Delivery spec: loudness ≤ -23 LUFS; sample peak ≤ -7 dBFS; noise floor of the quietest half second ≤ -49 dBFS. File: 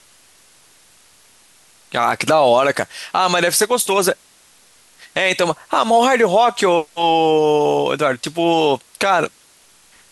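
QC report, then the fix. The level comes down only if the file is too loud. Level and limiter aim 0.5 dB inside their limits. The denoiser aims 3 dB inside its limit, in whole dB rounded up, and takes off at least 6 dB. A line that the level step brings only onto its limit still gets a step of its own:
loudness -16.5 LUFS: fail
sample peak -4.5 dBFS: fail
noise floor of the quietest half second -51 dBFS: pass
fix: trim -7 dB

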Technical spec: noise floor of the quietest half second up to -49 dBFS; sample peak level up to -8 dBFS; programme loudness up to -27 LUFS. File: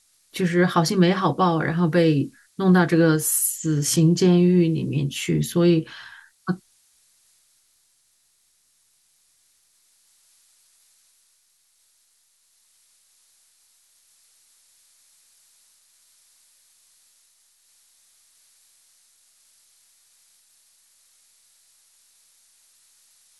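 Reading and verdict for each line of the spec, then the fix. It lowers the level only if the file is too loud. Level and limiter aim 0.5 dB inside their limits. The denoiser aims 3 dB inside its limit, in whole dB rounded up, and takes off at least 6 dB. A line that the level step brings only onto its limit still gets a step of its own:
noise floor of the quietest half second -65 dBFS: pass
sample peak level -6.0 dBFS: fail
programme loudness -20.5 LUFS: fail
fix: trim -7 dB

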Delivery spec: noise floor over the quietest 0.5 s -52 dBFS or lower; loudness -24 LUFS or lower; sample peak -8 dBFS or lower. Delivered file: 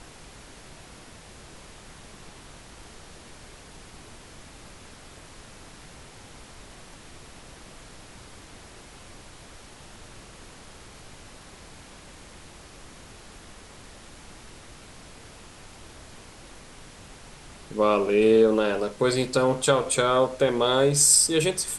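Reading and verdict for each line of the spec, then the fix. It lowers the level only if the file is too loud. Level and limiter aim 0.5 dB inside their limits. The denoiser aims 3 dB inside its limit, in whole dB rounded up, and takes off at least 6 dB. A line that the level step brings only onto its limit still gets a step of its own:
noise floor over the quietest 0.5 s -47 dBFS: fail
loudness -21.0 LUFS: fail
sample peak -5.5 dBFS: fail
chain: noise reduction 6 dB, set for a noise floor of -47 dBFS; trim -3.5 dB

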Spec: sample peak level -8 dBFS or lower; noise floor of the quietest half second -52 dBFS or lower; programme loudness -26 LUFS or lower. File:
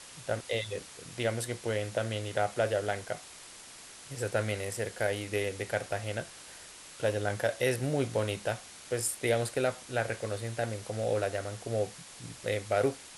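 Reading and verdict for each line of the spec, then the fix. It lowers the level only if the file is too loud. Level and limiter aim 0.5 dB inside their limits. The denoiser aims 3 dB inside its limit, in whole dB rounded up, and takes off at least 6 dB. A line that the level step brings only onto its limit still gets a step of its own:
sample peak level -15.0 dBFS: pass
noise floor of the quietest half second -50 dBFS: fail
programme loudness -33.0 LUFS: pass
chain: noise reduction 6 dB, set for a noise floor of -50 dBFS

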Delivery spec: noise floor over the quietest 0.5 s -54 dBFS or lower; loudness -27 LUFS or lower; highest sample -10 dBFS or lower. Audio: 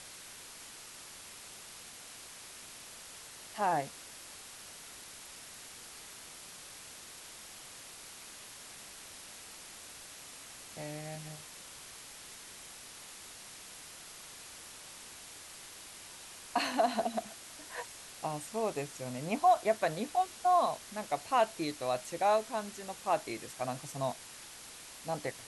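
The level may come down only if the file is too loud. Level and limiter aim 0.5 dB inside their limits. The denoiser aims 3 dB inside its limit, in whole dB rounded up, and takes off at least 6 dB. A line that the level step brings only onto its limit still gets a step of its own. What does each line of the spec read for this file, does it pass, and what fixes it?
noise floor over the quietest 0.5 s -50 dBFS: fail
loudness -37.5 LUFS: pass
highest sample -16.5 dBFS: pass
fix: noise reduction 7 dB, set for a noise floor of -50 dBFS

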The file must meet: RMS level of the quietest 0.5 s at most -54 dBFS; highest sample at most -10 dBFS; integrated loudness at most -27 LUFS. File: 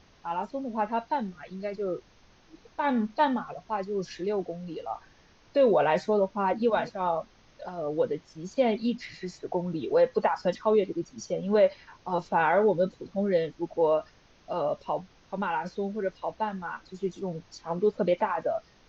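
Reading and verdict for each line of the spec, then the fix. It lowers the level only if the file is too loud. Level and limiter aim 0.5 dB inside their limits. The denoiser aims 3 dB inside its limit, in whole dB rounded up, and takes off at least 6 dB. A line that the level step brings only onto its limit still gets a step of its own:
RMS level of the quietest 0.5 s -58 dBFS: pass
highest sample -12.0 dBFS: pass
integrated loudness -28.5 LUFS: pass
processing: none needed

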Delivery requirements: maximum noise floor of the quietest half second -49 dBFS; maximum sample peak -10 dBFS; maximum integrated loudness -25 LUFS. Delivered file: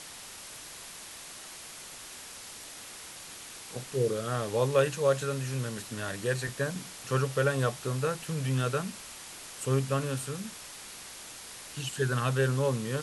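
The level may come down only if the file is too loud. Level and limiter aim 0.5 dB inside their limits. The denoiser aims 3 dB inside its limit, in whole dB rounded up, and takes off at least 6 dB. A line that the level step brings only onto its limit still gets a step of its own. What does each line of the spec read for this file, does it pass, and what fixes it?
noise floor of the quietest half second -45 dBFS: fail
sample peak -13.0 dBFS: pass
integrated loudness -32.0 LUFS: pass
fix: noise reduction 7 dB, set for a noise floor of -45 dBFS

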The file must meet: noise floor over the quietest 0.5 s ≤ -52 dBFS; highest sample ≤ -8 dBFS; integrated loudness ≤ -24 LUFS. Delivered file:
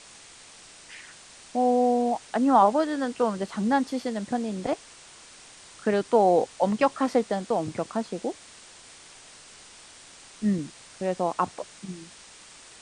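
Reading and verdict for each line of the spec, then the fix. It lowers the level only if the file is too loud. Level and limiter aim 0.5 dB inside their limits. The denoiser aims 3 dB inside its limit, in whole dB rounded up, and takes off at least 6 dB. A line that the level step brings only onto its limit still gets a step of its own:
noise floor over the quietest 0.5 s -49 dBFS: fail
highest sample -7.5 dBFS: fail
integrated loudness -25.5 LUFS: pass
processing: noise reduction 6 dB, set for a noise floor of -49 dBFS; peak limiter -8.5 dBFS

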